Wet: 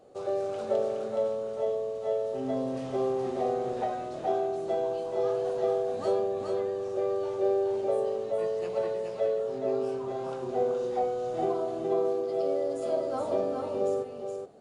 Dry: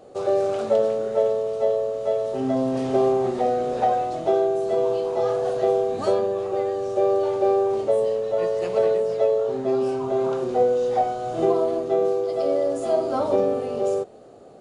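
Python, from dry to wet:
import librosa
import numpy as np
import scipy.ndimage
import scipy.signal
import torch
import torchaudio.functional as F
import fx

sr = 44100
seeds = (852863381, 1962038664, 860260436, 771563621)

y = x + 10.0 ** (-4.0 / 20.0) * np.pad(x, (int(419 * sr / 1000.0), 0))[:len(x)]
y = F.gain(torch.from_numpy(y), -9.0).numpy()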